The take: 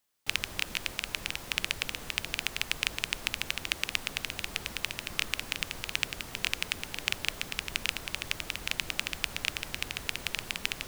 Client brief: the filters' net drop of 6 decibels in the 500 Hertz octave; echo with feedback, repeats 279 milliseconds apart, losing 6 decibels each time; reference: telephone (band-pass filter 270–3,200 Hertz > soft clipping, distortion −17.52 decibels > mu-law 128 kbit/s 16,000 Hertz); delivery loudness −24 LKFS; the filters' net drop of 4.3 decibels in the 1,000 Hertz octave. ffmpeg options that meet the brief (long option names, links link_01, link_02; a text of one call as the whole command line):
ffmpeg -i in.wav -af "highpass=270,lowpass=3200,equalizer=frequency=500:width_type=o:gain=-6,equalizer=frequency=1000:width_type=o:gain=-4,aecho=1:1:279|558|837|1116|1395|1674:0.501|0.251|0.125|0.0626|0.0313|0.0157,asoftclip=threshold=-13.5dB,volume=12dB" -ar 16000 -c:a pcm_mulaw out.wav